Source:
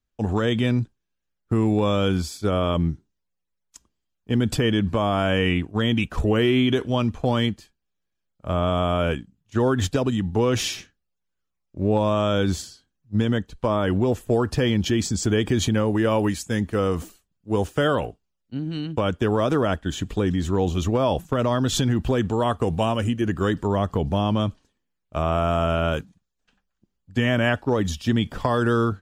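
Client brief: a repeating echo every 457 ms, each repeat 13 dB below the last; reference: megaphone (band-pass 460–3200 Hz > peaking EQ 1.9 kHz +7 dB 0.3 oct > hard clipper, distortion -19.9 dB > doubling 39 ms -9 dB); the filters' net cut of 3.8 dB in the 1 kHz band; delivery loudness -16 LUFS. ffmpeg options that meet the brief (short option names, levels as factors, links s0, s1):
-filter_complex "[0:a]highpass=460,lowpass=3200,equalizer=f=1000:t=o:g=-5,equalizer=f=1900:t=o:w=0.3:g=7,aecho=1:1:457|914|1371:0.224|0.0493|0.0108,asoftclip=type=hard:threshold=0.106,asplit=2[s0][s1];[s1]adelay=39,volume=0.355[s2];[s0][s2]amix=inputs=2:normalize=0,volume=4.22"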